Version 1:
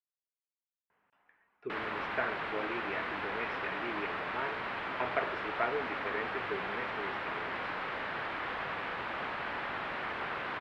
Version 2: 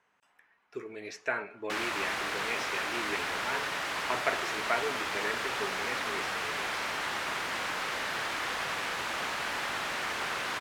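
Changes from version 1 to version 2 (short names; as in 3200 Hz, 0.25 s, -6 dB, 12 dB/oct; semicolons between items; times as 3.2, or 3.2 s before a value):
speech: entry -0.90 s; master: remove air absorption 440 m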